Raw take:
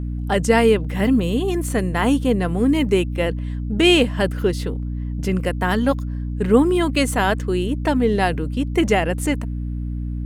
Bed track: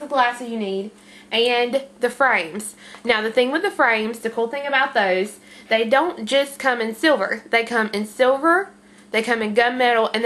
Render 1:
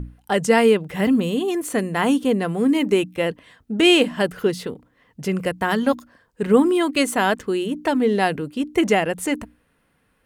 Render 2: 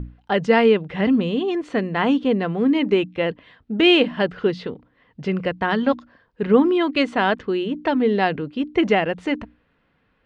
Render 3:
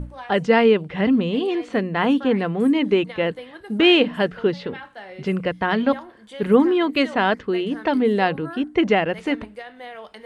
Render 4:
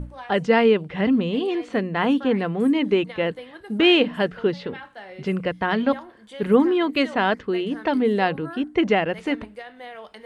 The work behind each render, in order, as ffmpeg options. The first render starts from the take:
-af "bandreject=f=60:t=h:w=6,bandreject=f=120:t=h:w=6,bandreject=f=180:t=h:w=6,bandreject=f=240:t=h:w=6,bandreject=f=300:t=h:w=6"
-af "lowpass=f=4.2k:w=0.5412,lowpass=f=4.2k:w=1.3066"
-filter_complex "[1:a]volume=-20.5dB[a];[0:a][a]amix=inputs=2:normalize=0"
-af "volume=-1.5dB"

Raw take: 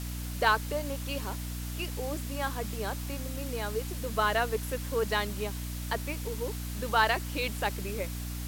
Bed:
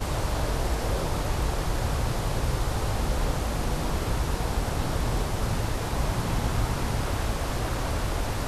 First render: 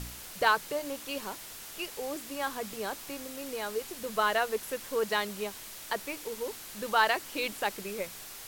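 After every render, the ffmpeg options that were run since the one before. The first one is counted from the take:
-af "bandreject=f=60:t=h:w=4,bandreject=f=120:t=h:w=4,bandreject=f=180:t=h:w=4,bandreject=f=240:t=h:w=4,bandreject=f=300:t=h:w=4"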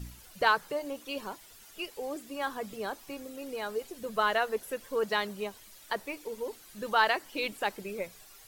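-af "afftdn=nr=12:nf=-45"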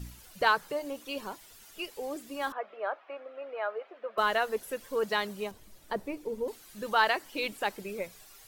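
-filter_complex "[0:a]asettb=1/sr,asplit=3[a][b][c];[a]atrim=end=2.524[d];[b]atrim=start=2.52:end=4.18,asetpts=PTS-STARTPTS,afade=t=in:d=0.004:c=qsin,afade=t=out:st=1.656:d=0.004:c=qsin,highpass=f=430:w=0.5412,highpass=f=430:w=1.3066,equalizer=f=430:t=q:w=4:g=-4,equalizer=f=620:t=q:w=4:g=9,equalizer=f=1.3k:t=q:w=4:g=7,lowpass=f=2.5k:w=0.5412,lowpass=f=2.5k:w=1.3066[e];[c]atrim=start=4.176[f];[d][e]acrossfade=d=0.004:c1=hsin:c2=qsin[g];[g][f]acrossfade=d=0.004:c1=qsin:c2=hsin,asettb=1/sr,asplit=3[h][i][j];[h]atrim=end=5.514[k];[i]atrim=start=5.51:end=6.48,asetpts=PTS-STARTPTS,afade=t=in:d=0.004:c=qsin,afade=t=out:st=0.966:d=0.004:c=qsin,tiltshelf=f=730:g=8[l];[j]atrim=start=6.476[m];[k][l]acrossfade=d=0.004:c1=hsin:c2=qsin[n];[n][m]acrossfade=d=0.004:c1=qsin:c2=hsin"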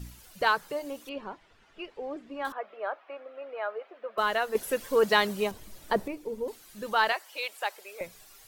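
-filter_complex "[0:a]asettb=1/sr,asplit=3[a][b][c];[a]atrim=end=1.094[d];[b]atrim=start=1.09:end=2.45,asetpts=PTS-STARTPTS,afade=t=in:d=0.004:c=qsin,afade=t=out:st=1.356:d=0.004:c=qsin,lowpass=2.3k[e];[c]atrim=start=2.446[f];[d][e]acrossfade=d=0.004:c1=hsin:c2=qsin[g];[g][f]acrossfade=d=0.004:c1=qsin:c2=hsin,asettb=1/sr,asplit=3[h][i][j];[h]atrim=end=4.554[k];[i]atrim=start=4.55:end=6.08,asetpts=PTS-STARTPTS,afade=t=in:d=0.004:c=qsin,afade=t=out:st=1.526:d=0.004:c=qsin,acontrast=81[l];[j]atrim=start=6.076[m];[k][l]acrossfade=d=0.004:c1=hsin:c2=qsin[n];[n][m]acrossfade=d=0.004:c1=qsin:c2=hsin,asettb=1/sr,asplit=3[o][p][q];[o]atrim=end=7.124[r];[p]atrim=start=7.12:end=8.01,asetpts=PTS-STARTPTS,afade=t=in:d=0.004:c=qsin,afade=t=out:st=0.886:d=0.004:c=qsin,highpass=f=540:w=0.5412,highpass=f=540:w=1.3066[s];[q]atrim=start=8.006[t];[r][s]acrossfade=d=0.004:c1=hsin:c2=qsin[u];[u][t]acrossfade=d=0.004:c1=qsin:c2=hsin"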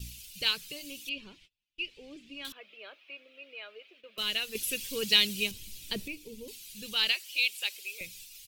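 -af "agate=range=-31dB:threshold=-53dB:ratio=16:detection=peak,firequalizer=gain_entry='entry(100,0);entry(770,-24);entry(1800,-10);entry(2500,9);entry(7700,6)':delay=0.05:min_phase=1"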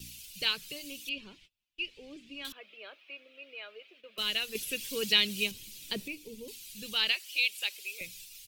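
-filter_complex "[0:a]acrossover=split=130|4100[a][b][c];[a]acompressor=threshold=-57dB:ratio=6[d];[c]alimiter=level_in=5.5dB:limit=-24dB:level=0:latency=1:release=194,volume=-5.5dB[e];[d][b][e]amix=inputs=3:normalize=0"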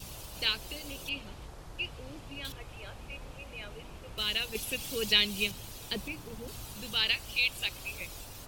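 -filter_complex "[1:a]volume=-20dB[a];[0:a][a]amix=inputs=2:normalize=0"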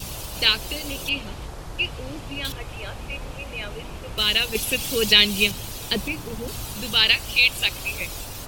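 -af "volume=11dB,alimiter=limit=-1dB:level=0:latency=1"

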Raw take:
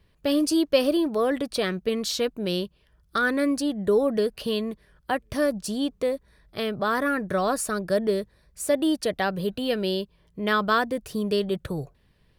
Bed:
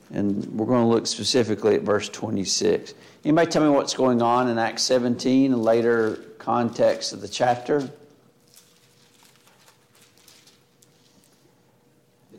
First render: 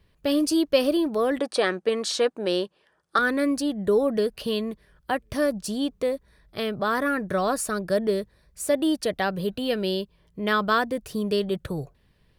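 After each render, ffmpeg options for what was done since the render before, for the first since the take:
-filter_complex "[0:a]asettb=1/sr,asplit=3[a][b][c];[a]atrim=end=1.394[d];[b]atrim=start=1.39:end=3.19,asetpts=PTS-STARTPTS,afade=t=in:d=0.004:c=qsin,afade=t=out:st=1.796:d=0.004:c=qsin,highpass=260,equalizer=f=350:t=q:w=4:g=4,equalizer=f=530:t=q:w=4:g=5,equalizer=f=820:t=q:w=4:g=9,equalizer=f=1.2k:t=q:w=4:g=5,equalizer=f=1.7k:t=q:w=4:g=6,equalizer=f=8.8k:t=q:w=4:g=4,lowpass=f=9.8k:w=0.5412,lowpass=f=9.8k:w=1.3066[e];[c]atrim=start=3.186[f];[d][e]acrossfade=d=0.004:c1=hsin:c2=qsin[g];[g][f]acrossfade=d=0.004:c1=qsin:c2=hsin"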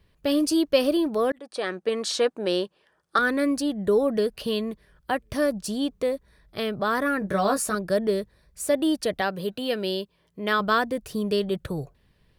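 -filter_complex "[0:a]asettb=1/sr,asplit=3[a][b][c];[a]atrim=end=7.204[d];[b]atrim=start=7.2:end=7.75,asetpts=PTS-STARTPTS,afade=t=in:d=0.004:c=qsin,afade=t=out:st=0.546:d=0.004:c=qsin,asplit=2[e][f];[f]adelay=15,volume=-4dB[g];[e][g]amix=inputs=2:normalize=0,atrim=end_sample=24255[h];[c]atrim=start=7.746[i];[d][h]acrossfade=d=0.004:c1=hsin:c2=qsin[j];[j][i]acrossfade=d=0.004:c1=qsin:c2=hsin,asettb=1/sr,asplit=3[k][l][m];[k]atrim=end=9.214[n];[l]atrim=start=9.21:end=10.6,asetpts=PTS-STARTPTS,afade=t=in:d=0.004:c=qsin,afade=t=out:st=1.386:d=0.004:c=qsin,highpass=f=230:p=1[o];[m]atrim=start=10.596[p];[n][o]acrossfade=d=0.004:c1=hsin:c2=qsin[q];[q][p]acrossfade=d=0.004:c1=qsin:c2=hsin,asplit=2[r][s];[r]atrim=end=1.32,asetpts=PTS-STARTPTS,afade=t=out:st=1.316:d=0.004:c=hsin[t];[s]atrim=start=1.32,asetpts=PTS-STARTPTS,afade=t=in:d=0.94:c=qsin[u];[t][u]concat=n=2:v=0:a=1"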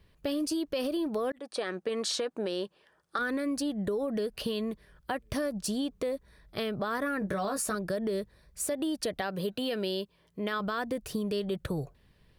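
-af "alimiter=limit=-19.5dB:level=0:latency=1:release=68,acompressor=threshold=-28dB:ratio=6"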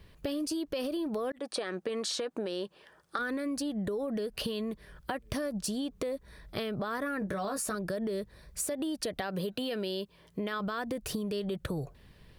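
-filter_complex "[0:a]asplit=2[a][b];[b]alimiter=level_in=4.5dB:limit=-24dB:level=0:latency=1,volume=-4.5dB,volume=1.5dB[c];[a][c]amix=inputs=2:normalize=0,acompressor=threshold=-32dB:ratio=4"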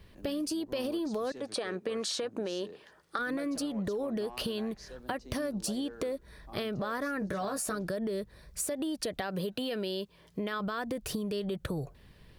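-filter_complex "[1:a]volume=-28dB[a];[0:a][a]amix=inputs=2:normalize=0"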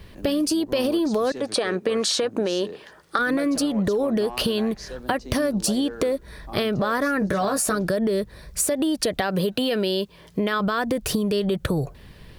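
-af "volume=11dB"

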